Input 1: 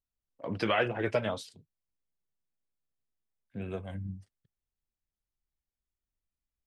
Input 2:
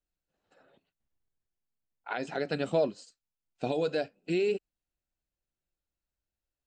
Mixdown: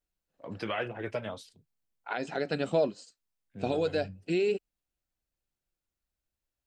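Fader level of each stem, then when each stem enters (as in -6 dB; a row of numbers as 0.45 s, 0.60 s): -5.5 dB, +0.5 dB; 0.00 s, 0.00 s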